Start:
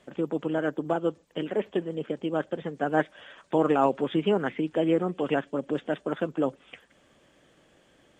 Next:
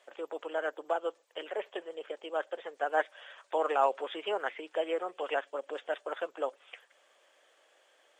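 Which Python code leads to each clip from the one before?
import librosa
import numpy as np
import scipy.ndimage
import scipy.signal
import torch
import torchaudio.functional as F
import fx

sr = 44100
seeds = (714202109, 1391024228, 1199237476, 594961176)

y = scipy.signal.sosfilt(scipy.signal.butter(4, 520.0, 'highpass', fs=sr, output='sos'), x)
y = F.gain(torch.from_numpy(y), -2.0).numpy()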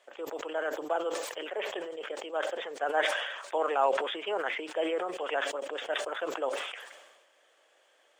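y = fx.sustainer(x, sr, db_per_s=45.0)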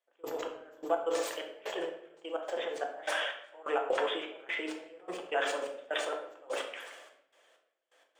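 y = fx.step_gate(x, sr, bpm=127, pattern='..xx...x.xxx', floor_db=-24.0, edge_ms=4.5)
y = fx.room_shoebox(y, sr, seeds[0], volume_m3=170.0, walls='mixed', distance_m=0.73)
y = F.gain(torch.from_numpy(y), -1.5).numpy()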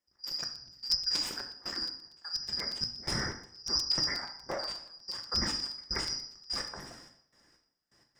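y = fx.band_shuffle(x, sr, order='2341')
y = fx.buffer_crackle(y, sr, first_s=0.31, period_s=0.12, block=256, kind='repeat')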